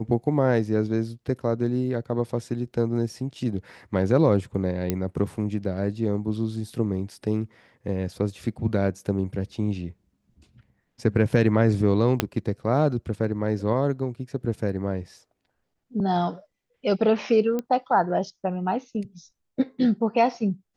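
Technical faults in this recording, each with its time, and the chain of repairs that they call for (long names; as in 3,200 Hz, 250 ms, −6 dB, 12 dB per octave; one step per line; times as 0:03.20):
0:04.90: click −10 dBFS
0:12.20: click −5 dBFS
0:17.59: click −16 dBFS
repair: click removal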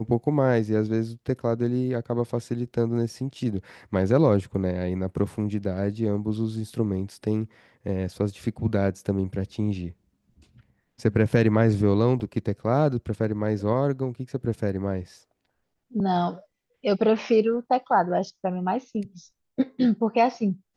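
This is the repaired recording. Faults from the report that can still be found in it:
0:12.20: click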